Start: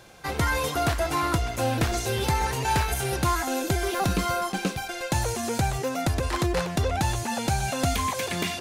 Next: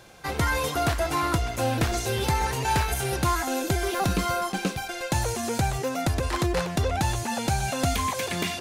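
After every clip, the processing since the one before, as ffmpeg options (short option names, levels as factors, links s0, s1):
-af anull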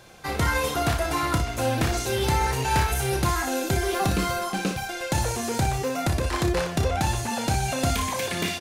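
-af "aecho=1:1:31|59:0.398|0.398"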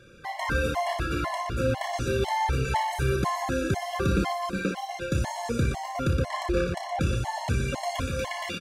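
-af "aemphasis=mode=reproduction:type=50kf,aecho=1:1:119.5|259.5:0.355|0.355,afftfilt=real='re*gt(sin(2*PI*2*pts/sr)*(1-2*mod(floor(b*sr/1024/560),2)),0)':imag='im*gt(sin(2*PI*2*pts/sr)*(1-2*mod(floor(b*sr/1024/560),2)),0)':win_size=1024:overlap=0.75"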